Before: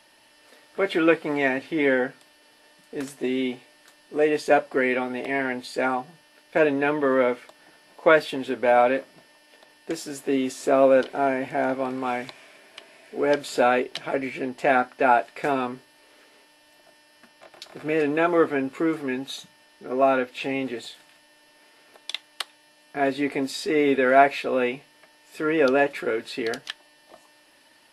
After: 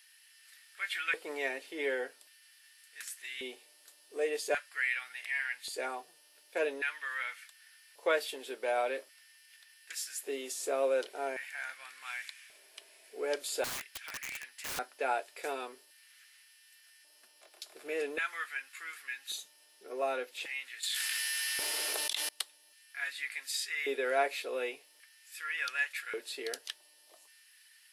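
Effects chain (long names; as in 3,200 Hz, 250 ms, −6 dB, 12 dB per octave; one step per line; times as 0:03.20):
first-order pre-emphasis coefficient 0.9
auto-filter high-pass square 0.44 Hz 420–1,700 Hz
0:13.64–0:14.79: wrap-around overflow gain 33.5 dB
0:20.83–0:22.29: envelope flattener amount 100%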